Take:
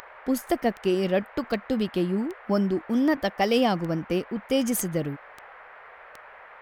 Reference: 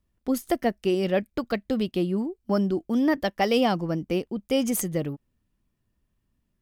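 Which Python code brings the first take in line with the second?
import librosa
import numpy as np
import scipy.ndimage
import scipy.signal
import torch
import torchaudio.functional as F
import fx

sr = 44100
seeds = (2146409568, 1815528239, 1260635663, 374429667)

y = fx.fix_declick_ar(x, sr, threshold=10.0)
y = fx.noise_reduce(y, sr, print_start_s=5.64, print_end_s=6.14, reduce_db=27.0)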